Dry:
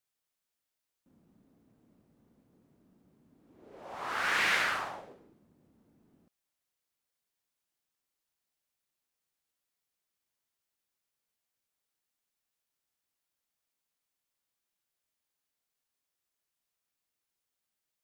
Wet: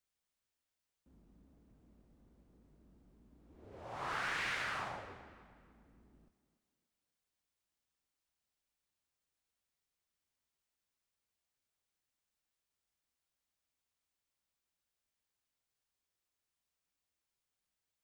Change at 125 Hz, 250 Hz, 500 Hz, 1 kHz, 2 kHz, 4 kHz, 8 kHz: +2.0 dB, -4.5 dB, -5.5 dB, -6.5 dB, -9.0 dB, -9.0 dB, -9.5 dB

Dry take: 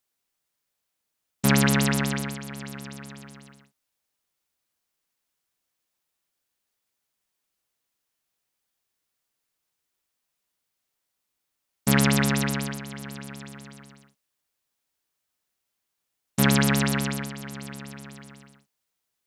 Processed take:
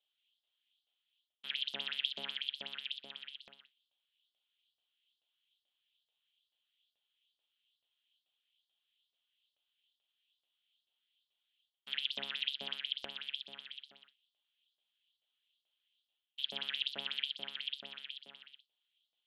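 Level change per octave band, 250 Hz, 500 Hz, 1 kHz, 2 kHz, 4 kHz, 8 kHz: -36.5 dB, -23.5 dB, -23.0 dB, -15.5 dB, -2.0 dB, under -35 dB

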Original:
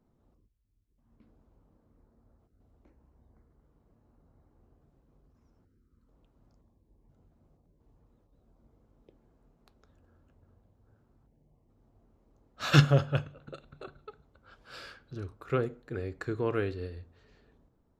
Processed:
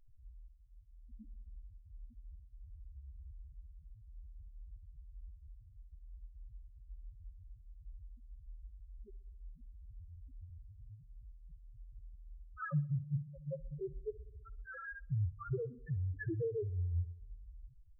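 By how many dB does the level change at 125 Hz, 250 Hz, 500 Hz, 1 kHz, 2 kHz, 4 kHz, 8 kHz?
-7.0 dB, -11.0 dB, -8.5 dB, -13.0 dB, -11.0 dB, under -40 dB, no reading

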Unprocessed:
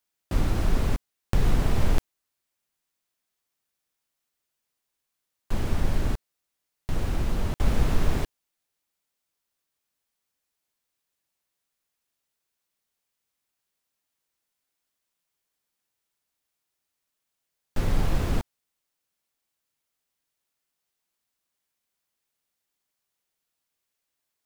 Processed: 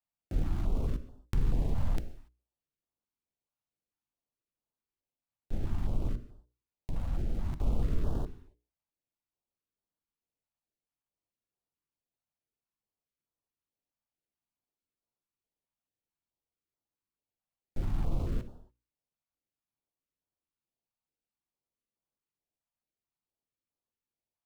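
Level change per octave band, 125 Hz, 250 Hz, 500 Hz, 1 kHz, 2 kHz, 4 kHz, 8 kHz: -6.5 dB, -7.5 dB, -10.0 dB, -12.0 dB, -16.5 dB, -15.5 dB, -16.5 dB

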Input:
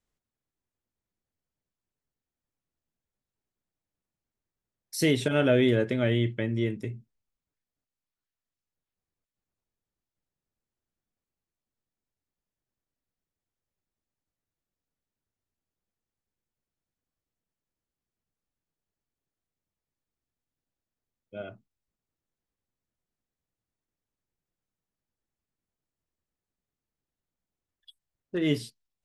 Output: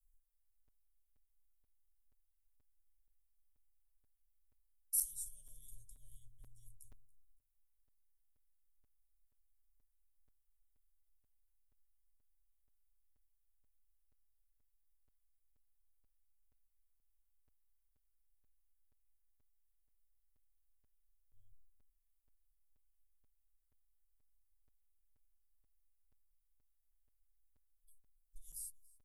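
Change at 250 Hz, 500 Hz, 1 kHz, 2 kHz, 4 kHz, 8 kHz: under -40 dB, under -40 dB, under -40 dB, under -40 dB, -29.5 dB, +1.0 dB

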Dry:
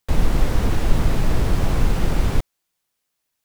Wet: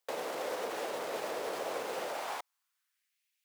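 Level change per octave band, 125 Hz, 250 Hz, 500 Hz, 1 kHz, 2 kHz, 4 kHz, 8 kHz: under -40 dB, -22.0 dB, -5.5 dB, -6.0 dB, -8.5 dB, -9.0 dB, -9.0 dB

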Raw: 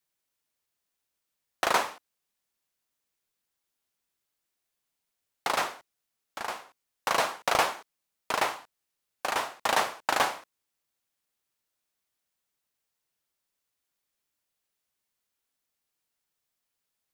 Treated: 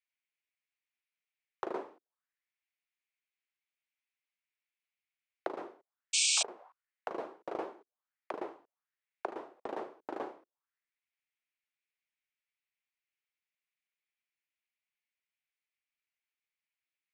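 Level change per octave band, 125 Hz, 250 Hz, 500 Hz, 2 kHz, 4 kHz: under -15 dB, -2.5 dB, -7.0 dB, -13.0 dB, -2.5 dB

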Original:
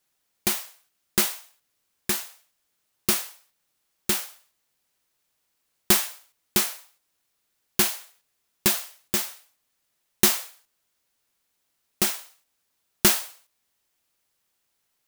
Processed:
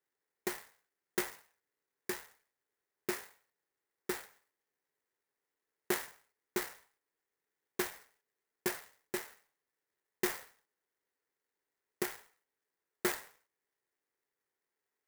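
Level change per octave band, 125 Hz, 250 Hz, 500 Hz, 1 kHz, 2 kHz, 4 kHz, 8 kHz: -17.0 dB, -10.5 dB, -5.5 dB, -10.0 dB, -9.5 dB, -19.0 dB, -18.5 dB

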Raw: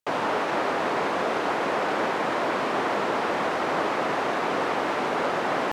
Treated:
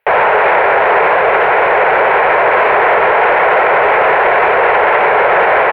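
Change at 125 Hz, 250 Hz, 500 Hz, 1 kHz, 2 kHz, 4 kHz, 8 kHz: +6.0 dB, +2.5 dB, +15.5 dB, +16.0 dB, +18.0 dB, +7.0 dB, under -10 dB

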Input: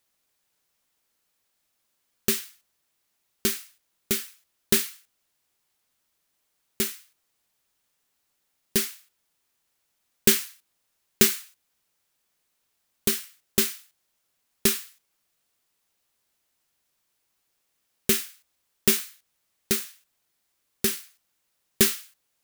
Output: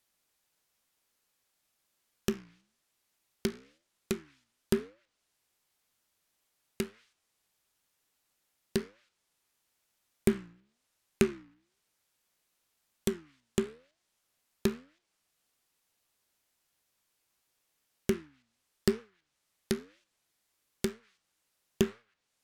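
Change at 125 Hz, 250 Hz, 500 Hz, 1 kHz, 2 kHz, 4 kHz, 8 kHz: -1.0 dB, -2.0 dB, -2.0 dB, -5.5 dB, -11.0 dB, -15.0 dB, -18.5 dB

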